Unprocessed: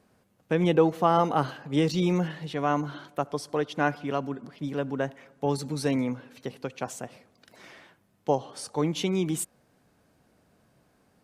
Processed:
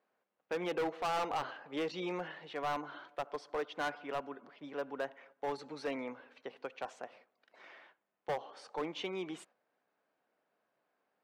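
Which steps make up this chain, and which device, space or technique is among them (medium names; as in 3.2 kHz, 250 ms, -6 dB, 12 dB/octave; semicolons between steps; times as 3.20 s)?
walkie-talkie (band-pass 510–2800 Hz; hard clipper -26.5 dBFS, distortion -6 dB; gate -57 dBFS, range -7 dB); trim -4 dB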